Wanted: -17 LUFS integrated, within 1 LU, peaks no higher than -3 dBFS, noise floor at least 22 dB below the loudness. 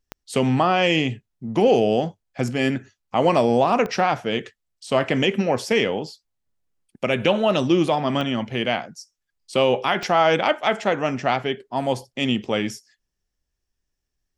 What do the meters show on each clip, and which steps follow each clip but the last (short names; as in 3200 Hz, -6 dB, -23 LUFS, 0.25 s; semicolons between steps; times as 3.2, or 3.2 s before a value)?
clicks 4; loudness -21.5 LUFS; peak -5.0 dBFS; loudness target -17.0 LUFS
-> de-click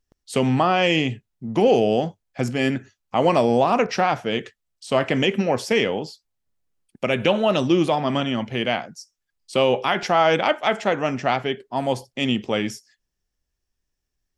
clicks 0; loudness -21.5 LUFS; peak -5.0 dBFS; loudness target -17.0 LUFS
-> gain +4.5 dB; limiter -3 dBFS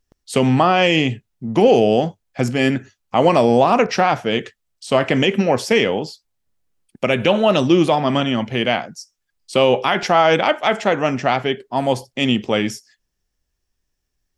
loudness -17.5 LUFS; peak -3.0 dBFS; noise floor -75 dBFS